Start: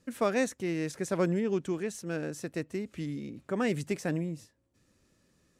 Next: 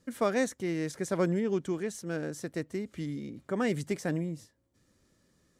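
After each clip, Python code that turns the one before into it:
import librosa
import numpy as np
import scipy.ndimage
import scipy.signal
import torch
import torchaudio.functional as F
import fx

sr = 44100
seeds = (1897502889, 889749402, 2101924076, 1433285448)

y = fx.notch(x, sr, hz=2600.0, q=9.1)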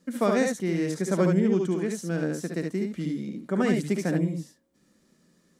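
y = fx.low_shelf_res(x, sr, hz=140.0, db=-8.0, q=3.0)
y = fx.room_early_taps(y, sr, ms=(59, 72), db=(-9.0, -4.5))
y = F.gain(torch.from_numpy(y), 2.0).numpy()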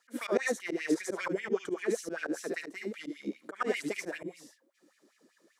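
y = fx.filter_lfo_highpass(x, sr, shape='sine', hz=5.1, low_hz=290.0, high_hz=2600.0, q=4.4)
y = fx.auto_swell(y, sr, attack_ms=109.0)
y = F.gain(torch.from_numpy(y), -3.5).numpy()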